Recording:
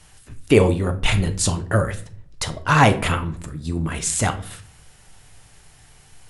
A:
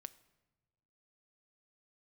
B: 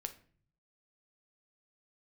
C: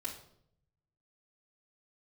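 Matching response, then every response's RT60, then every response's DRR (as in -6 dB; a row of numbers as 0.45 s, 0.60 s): B; no single decay rate, 0.50 s, 0.70 s; 14.0 dB, 7.0 dB, -6.5 dB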